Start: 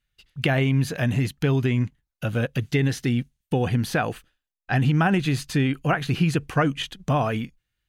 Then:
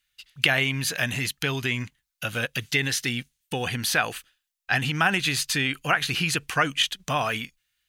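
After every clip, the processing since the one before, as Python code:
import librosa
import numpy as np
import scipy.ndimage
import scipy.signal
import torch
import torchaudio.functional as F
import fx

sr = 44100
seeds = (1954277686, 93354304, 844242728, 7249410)

y = fx.tilt_shelf(x, sr, db=-10.0, hz=970.0)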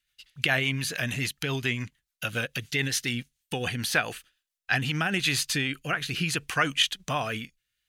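y = fx.rotary_switch(x, sr, hz=7.0, then_hz=0.65, switch_at_s=4.44)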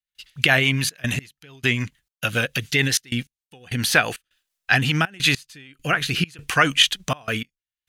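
y = fx.step_gate(x, sr, bpm=101, pattern='.xxxxx.x...xxx', floor_db=-24.0, edge_ms=4.5)
y = y * 10.0 ** (7.5 / 20.0)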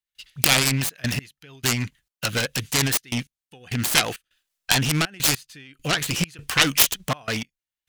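y = fx.self_delay(x, sr, depth_ms=0.53)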